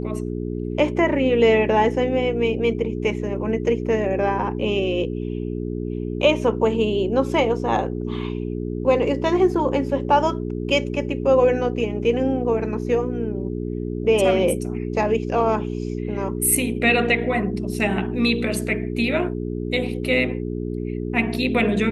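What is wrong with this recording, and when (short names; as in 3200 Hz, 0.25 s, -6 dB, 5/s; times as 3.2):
hum 60 Hz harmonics 7 -27 dBFS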